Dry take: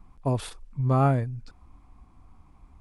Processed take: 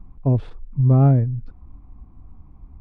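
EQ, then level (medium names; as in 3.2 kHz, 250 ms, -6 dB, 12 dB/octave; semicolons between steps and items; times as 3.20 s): dynamic bell 1.1 kHz, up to -6 dB, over -42 dBFS, Q 1.6; tape spacing loss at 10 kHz 35 dB; bass shelf 460 Hz +10.5 dB; 0.0 dB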